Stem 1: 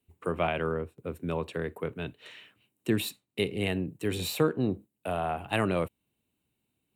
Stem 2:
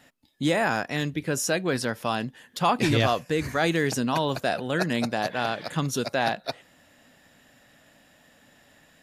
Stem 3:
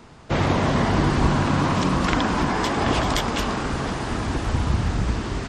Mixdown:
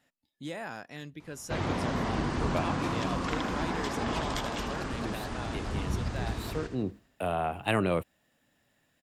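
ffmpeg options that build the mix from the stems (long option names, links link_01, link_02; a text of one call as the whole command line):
ffmpeg -i stem1.wav -i stem2.wav -i stem3.wav -filter_complex "[0:a]adelay=2150,volume=0.5dB[link_01];[1:a]volume=-15dB,asplit=2[link_02][link_03];[2:a]adelay=1200,volume=-11dB,asplit=2[link_04][link_05];[link_05]volume=-9dB[link_06];[link_03]apad=whole_len=401750[link_07];[link_01][link_07]sidechaincompress=threshold=-49dB:ratio=8:attack=9.8:release=531[link_08];[link_06]aecho=0:1:79|158|237|316|395|474|553|632:1|0.54|0.292|0.157|0.085|0.0459|0.0248|0.0134[link_09];[link_08][link_02][link_04][link_09]amix=inputs=4:normalize=0" out.wav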